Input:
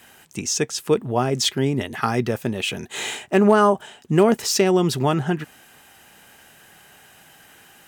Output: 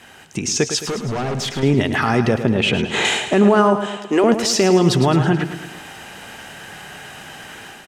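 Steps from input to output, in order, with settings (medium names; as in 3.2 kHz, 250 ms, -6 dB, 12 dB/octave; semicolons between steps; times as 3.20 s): 2.34–3.05 s: treble shelf 4 kHz -11.5 dB; 3.82–4.24 s: high-pass 360 Hz 24 dB/octave; compression 2:1, threshold -30 dBFS, peak gain reduction 11 dB; peak limiter -20 dBFS, peak gain reduction 8.5 dB; level rider gain up to 8 dB; 0.85–1.63 s: hard clipper -27.5 dBFS, distortion -11 dB; distance through air 54 m; feedback delay 108 ms, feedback 53%, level -10 dB; trim +6.5 dB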